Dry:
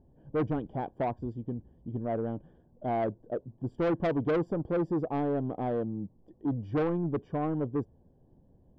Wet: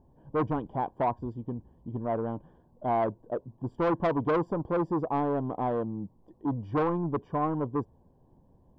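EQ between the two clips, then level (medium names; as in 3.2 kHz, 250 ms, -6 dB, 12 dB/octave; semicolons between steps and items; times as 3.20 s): peaking EQ 1 kHz +12 dB 0.56 oct; 0.0 dB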